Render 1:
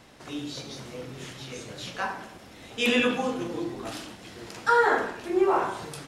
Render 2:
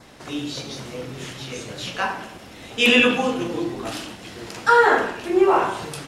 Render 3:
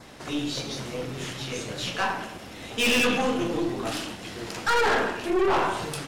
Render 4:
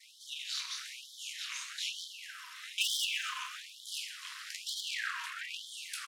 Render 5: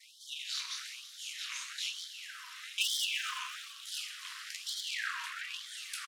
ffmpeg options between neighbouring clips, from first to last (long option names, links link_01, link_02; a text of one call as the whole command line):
ffmpeg -i in.wav -af "adynamicequalizer=threshold=0.00398:dfrequency=2800:dqfactor=4.4:tfrequency=2800:tqfactor=4.4:attack=5:release=100:ratio=0.375:range=3:mode=boostabove:tftype=bell,volume=6dB" out.wav
ffmpeg -i in.wav -af "aeval=exprs='(tanh(11.2*val(0)+0.35)-tanh(0.35))/11.2':channel_layout=same,volume=1.5dB" out.wav
ffmpeg -i in.wav -af "tremolo=f=270:d=0.919,aecho=1:1:125|250|375|500|625|750:0.2|0.118|0.0695|0.041|0.0242|0.0143,afftfilt=real='re*gte(b*sr/1024,930*pow(3100/930,0.5+0.5*sin(2*PI*1.1*pts/sr)))':imag='im*gte(b*sr/1024,930*pow(3100/930,0.5+0.5*sin(2*PI*1.1*pts/sr)))':win_size=1024:overlap=0.75" out.wav
ffmpeg -i in.wav -filter_complex "[0:a]asplit=7[link_01][link_02][link_03][link_04][link_05][link_06][link_07];[link_02]adelay=339,afreqshift=99,volume=-16.5dB[link_08];[link_03]adelay=678,afreqshift=198,volume=-20.9dB[link_09];[link_04]adelay=1017,afreqshift=297,volume=-25.4dB[link_10];[link_05]adelay=1356,afreqshift=396,volume=-29.8dB[link_11];[link_06]adelay=1695,afreqshift=495,volume=-34.2dB[link_12];[link_07]adelay=2034,afreqshift=594,volume=-38.7dB[link_13];[link_01][link_08][link_09][link_10][link_11][link_12][link_13]amix=inputs=7:normalize=0" out.wav